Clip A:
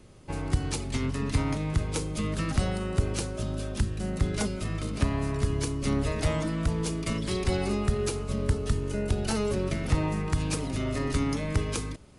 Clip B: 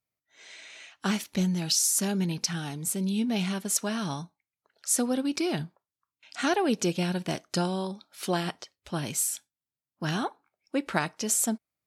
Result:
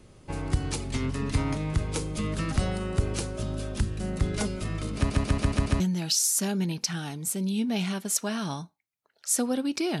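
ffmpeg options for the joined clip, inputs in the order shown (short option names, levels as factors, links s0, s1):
-filter_complex "[0:a]apad=whole_dur=10,atrim=end=10,asplit=6[s0][s1][s2][s3][s4][s5];[s0]atrim=end=5.102[s6];[s1]atrim=start=4.958:end=5.102[s7];[s2]atrim=start=4.958:end=5.102[s8];[s3]atrim=start=4.958:end=5.102[s9];[s4]atrim=start=4.958:end=5.102[s10];[s5]atrim=start=4.958:end=5.102[s11];[1:a]atrim=start=1.398:end=5.6[s12];[s6][s7]acrossfade=d=0.004:c1=hsin:c2=hsin[s13];[s13][s8]acrossfade=d=0.004:c1=hsin:c2=hsin[s14];[s14][s9]acrossfade=d=0.004:c1=hsin:c2=hsin[s15];[s15][s10]acrossfade=d=0.004:c1=hsin:c2=hsin[s16];[s16][s11]acrossfade=d=0.004:c1=hsin:c2=hsin[s17];[s17][s12]acrossfade=d=0.004:c1=hsin:c2=hsin"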